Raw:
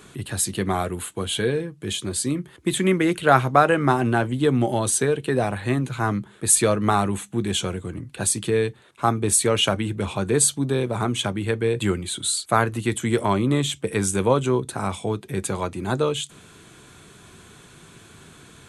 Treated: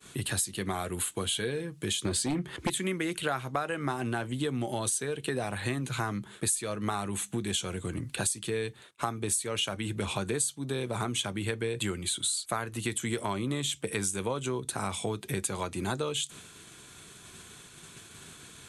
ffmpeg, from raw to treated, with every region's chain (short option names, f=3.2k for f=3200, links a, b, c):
-filter_complex "[0:a]asettb=1/sr,asplit=3[a][b][c];[a]atrim=end=2.054[d];[b]atrim=start=2.05:end=2.7,asetpts=PTS-STARTPTS,afade=t=in:d=0.004:c=qsin,afade=t=out:st=0.646:d=0.004:c=qsin,aemphasis=mode=reproduction:type=50kf,aeval=exprs='0.282*sin(PI/2*2.51*val(0)/0.282)':c=same[e];[c]atrim=start=2.696[f];[d][e]acrossfade=d=0.004:c1=hsin:c2=qsin[g];[g][f]acrossfade=d=0.004:c1=qsin:c2=hsin,agate=range=-33dB:threshold=-41dB:ratio=3:detection=peak,highshelf=f=2.1k:g=9,acompressor=threshold=-29dB:ratio=6"